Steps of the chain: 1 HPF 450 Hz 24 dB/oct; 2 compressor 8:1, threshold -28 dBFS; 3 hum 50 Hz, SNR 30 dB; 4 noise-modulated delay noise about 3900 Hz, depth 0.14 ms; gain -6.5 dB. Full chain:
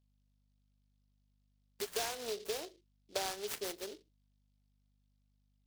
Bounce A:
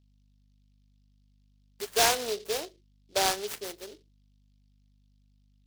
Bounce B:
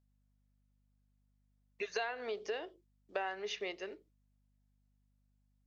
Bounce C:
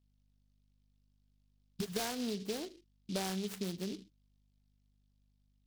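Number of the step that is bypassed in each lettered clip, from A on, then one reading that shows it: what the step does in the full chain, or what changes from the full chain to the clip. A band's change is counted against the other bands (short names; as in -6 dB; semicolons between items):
2, mean gain reduction 6.0 dB; 4, 8 kHz band -13.5 dB; 1, 125 Hz band +18.5 dB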